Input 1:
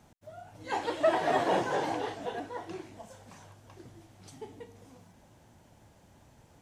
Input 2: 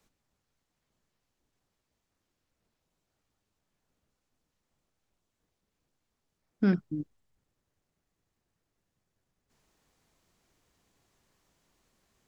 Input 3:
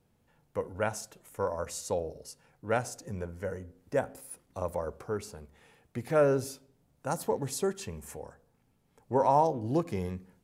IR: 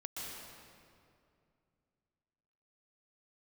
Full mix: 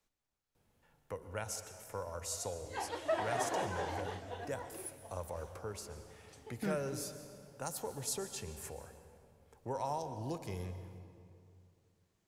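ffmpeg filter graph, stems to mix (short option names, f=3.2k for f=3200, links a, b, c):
-filter_complex "[0:a]adelay=2050,volume=-7dB[a];[1:a]volume=-9.5dB,asplit=2[b][c];[c]volume=-13dB[d];[2:a]acrossover=split=120|3000[e][f][g];[f]acompressor=threshold=-43dB:ratio=2[h];[e][h][g]amix=inputs=3:normalize=0,adelay=550,volume=-2.5dB,asplit=2[i][j];[j]volume=-7dB[k];[3:a]atrim=start_sample=2205[l];[d][k]amix=inputs=2:normalize=0[m];[m][l]afir=irnorm=-1:irlink=0[n];[a][b][i][n]amix=inputs=4:normalize=0,equalizer=f=190:t=o:w=2.1:g=-5.5"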